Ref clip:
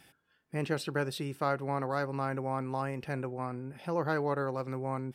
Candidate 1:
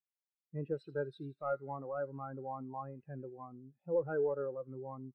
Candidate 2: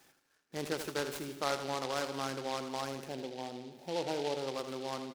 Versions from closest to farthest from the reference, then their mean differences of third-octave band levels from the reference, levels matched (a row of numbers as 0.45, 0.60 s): 2, 1; 9.5, 12.5 dB